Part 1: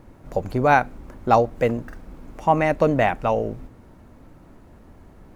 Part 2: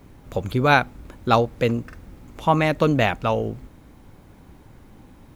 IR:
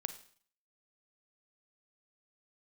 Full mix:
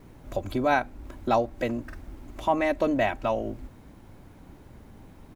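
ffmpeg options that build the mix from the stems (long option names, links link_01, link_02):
-filter_complex "[0:a]equalizer=frequency=1200:width=6.2:gain=-7.5,volume=-6.5dB,asplit=2[link_01][link_02];[1:a]adelay=3,volume=-3dB[link_03];[link_02]apad=whole_len=236232[link_04];[link_03][link_04]sidechaincompress=threshold=-29dB:ratio=8:attack=12:release=375[link_05];[link_01][link_05]amix=inputs=2:normalize=0"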